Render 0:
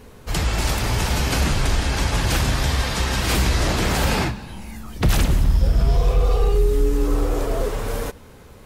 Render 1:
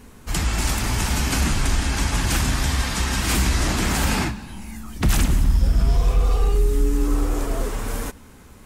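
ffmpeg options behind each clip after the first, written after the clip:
-af "equalizer=f=125:t=o:w=1:g=-4,equalizer=f=250:t=o:w=1:g=4,equalizer=f=500:t=o:w=1:g=-8,equalizer=f=4000:t=o:w=1:g=-3,equalizer=f=8000:t=o:w=1:g=4"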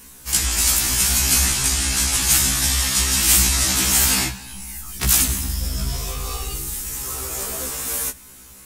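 -af "crystalizer=i=7:c=0,afftfilt=real='re*1.73*eq(mod(b,3),0)':imag='im*1.73*eq(mod(b,3),0)':win_size=2048:overlap=0.75,volume=0.668"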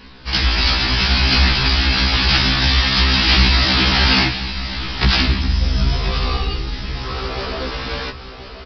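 -af "aresample=11025,aresample=44100,aecho=1:1:1029|2058|3087|4116:0.251|0.0955|0.0363|0.0138,volume=2.51"

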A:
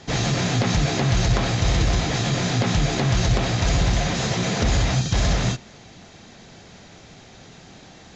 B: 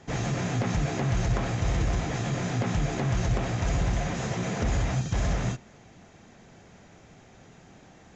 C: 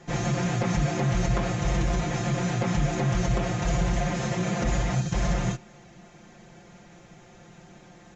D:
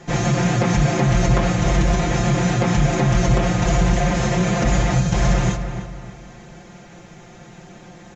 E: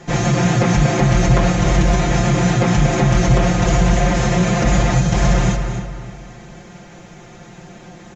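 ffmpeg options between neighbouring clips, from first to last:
-af "equalizer=f=4200:t=o:w=1:g=-10.5,volume=0.501"
-af "aecho=1:1:5.7:0.79"
-filter_complex "[0:a]asplit=2[s0][s1];[s1]adelay=302,lowpass=f=2700:p=1,volume=0.355,asplit=2[s2][s3];[s3]adelay=302,lowpass=f=2700:p=1,volume=0.39,asplit=2[s4][s5];[s5]adelay=302,lowpass=f=2700:p=1,volume=0.39,asplit=2[s6][s7];[s7]adelay=302,lowpass=f=2700:p=1,volume=0.39[s8];[s0][s2][s4][s6][s8]amix=inputs=5:normalize=0,volume=2.37"
-af "aecho=1:1:235:0.282,volume=1.33"

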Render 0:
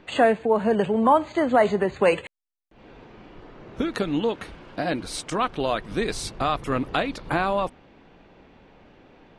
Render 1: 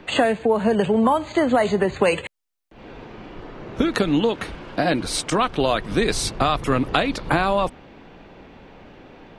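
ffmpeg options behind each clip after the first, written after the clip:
-filter_complex "[0:a]acrossover=split=130|3000[s0][s1][s2];[s1]acompressor=threshold=0.0708:ratio=6[s3];[s0][s3][s2]amix=inputs=3:normalize=0,volume=2.37"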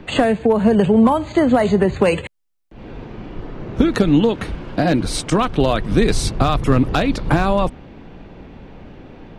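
-af "volume=3.16,asoftclip=hard,volume=0.316,lowshelf=f=300:g=11"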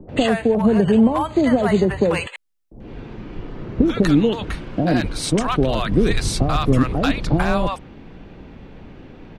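-filter_complex "[0:a]acrossover=split=720[s0][s1];[s1]adelay=90[s2];[s0][s2]amix=inputs=2:normalize=0,volume=0.891"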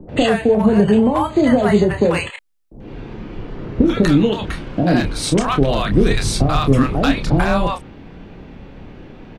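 -filter_complex "[0:a]asplit=2[s0][s1];[s1]adelay=29,volume=0.447[s2];[s0][s2]amix=inputs=2:normalize=0,volume=1.26"

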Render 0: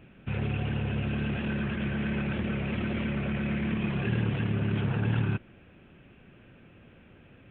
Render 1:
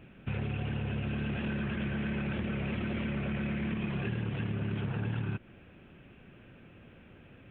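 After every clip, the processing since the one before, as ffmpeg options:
-af "acompressor=threshold=0.0316:ratio=6"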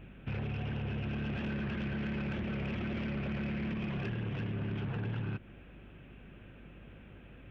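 -af "aeval=exprs='val(0)+0.002*(sin(2*PI*50*n/s)+sin(2*PI*2*50*n/s)/2+sin(2*PI*3*50*n/s)/3+sin(2*PI*4*50*n/s)/4+sin(2*PI*5*50*n/s)/5)':c=same,asoftclip=type=tanh:threshold=0.0316"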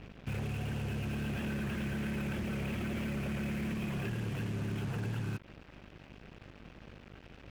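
-af "acrusher=bits=7:mix=0:aa=0.5"

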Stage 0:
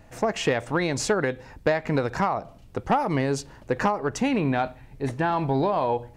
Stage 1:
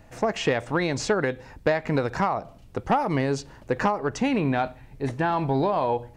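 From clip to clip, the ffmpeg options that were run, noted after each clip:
-filter_complex "[0:a]acrossover=split=7300[s0][s1];[s1]acompressor=threshold=0.00158:ratio=4:attack=1:release=60[s2];[s0][s2]amix=inputs=2:normalize=0"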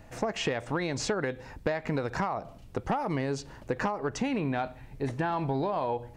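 -af "acompressor=threshold=0.0398:ratio=3"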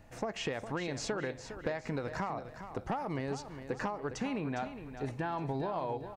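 -af "aecho=1:1:408|816|1224|1632:0.299|0.104|0.0366|0.0128,volume=0.501"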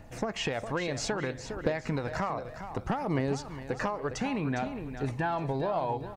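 -af "aphaser=in_gain=1:out_gain=1:delay=2:decay=0.32:speed=0.63:type=triangular,volume=1.68"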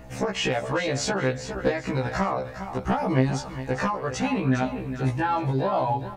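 -af "afftfilt=real='re*1.73*eq(mod(b,3),0)':imag='im*1.73*eq(mod(b,3),0)':win_size=2048:overlap=0.75,volume=2.66"

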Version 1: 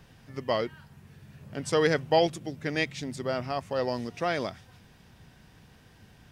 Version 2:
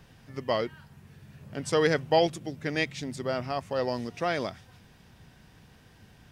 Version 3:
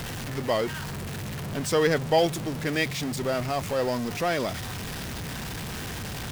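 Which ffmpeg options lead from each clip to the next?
-af anull
-af "aeval=exprs='val(0)+0.5*0.0355*sgn(val(0))':c=same"

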